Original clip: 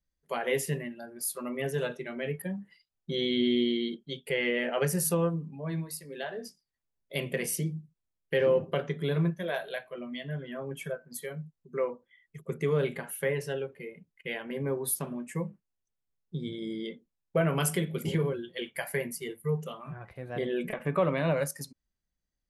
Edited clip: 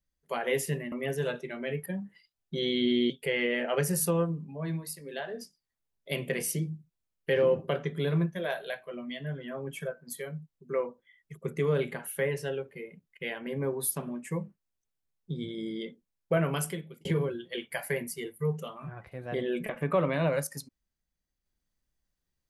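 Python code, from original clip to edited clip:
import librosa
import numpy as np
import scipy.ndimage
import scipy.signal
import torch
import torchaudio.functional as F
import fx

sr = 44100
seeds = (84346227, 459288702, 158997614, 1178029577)

y = fx.edit(x, sr, fx.cut(start_s=0.92, length_s=0.56),
    fx.cut(start_s=3.66, length_s=0.48),
    fx.fade_out_span(start_s=17.42, length_s=0.67), tone=tone)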